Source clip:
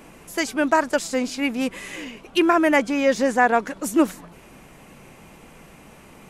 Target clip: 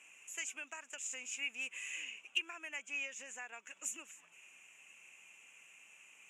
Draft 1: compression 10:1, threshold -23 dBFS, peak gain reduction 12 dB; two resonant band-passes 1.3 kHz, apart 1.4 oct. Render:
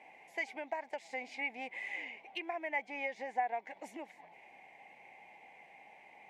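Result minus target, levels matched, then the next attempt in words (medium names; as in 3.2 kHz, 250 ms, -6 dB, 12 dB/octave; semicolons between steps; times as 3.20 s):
1 kHz band +15.0 dB
compression 10:1, threshold -23 dBFS, peak gain reduction 12 dB; two resonant band-passes 4.3 kHz, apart 1.4 oct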